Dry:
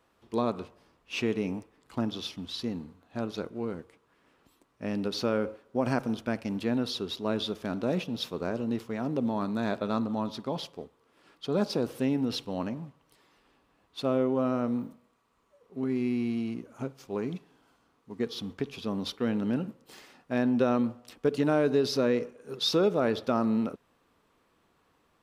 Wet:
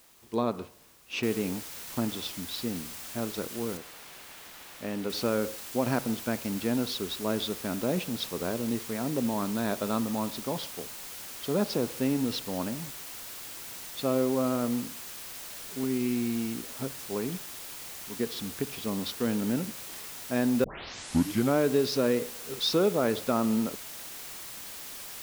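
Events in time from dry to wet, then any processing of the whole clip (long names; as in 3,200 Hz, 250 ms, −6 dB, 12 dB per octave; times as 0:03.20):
0:01.23: noise floor change −59 dB −42 dB
0:03.77–0:05.10: bass and treble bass −5 dB, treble −8 dB
0:20.64: tape start 0.94 s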